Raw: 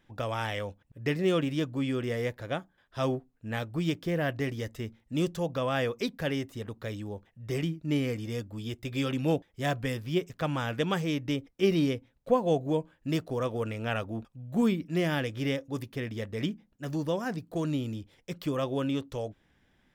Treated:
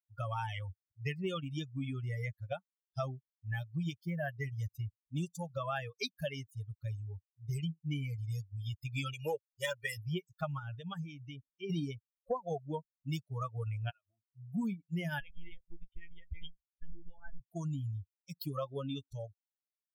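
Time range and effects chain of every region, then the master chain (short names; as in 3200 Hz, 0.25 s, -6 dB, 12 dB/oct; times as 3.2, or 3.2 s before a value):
9.13–9.97 low shelf 160 Hz -12 dB + comb 2.1 ms, depth 100%
10.58–11.7 high shelf 4200 Hz -5 dB + compressor 3:1, threshold -31 dBFS
13.9–14.3 HPF 340 Hz 6 dB/oct + compressor 20:1, threshold -40 dBFS
15.2–17.4 compressor 10:1, threshold -33 dBFS + comb 6.6 ms, depth 35% + monotone LPC vocoder at 8 kHz 170 Hz
whole clip: per-bin expansion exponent 3; bell 330 Hz -10 dB 0.71 oct; compressor 5:1, threshold -46 dBFS; gain +11.5 dB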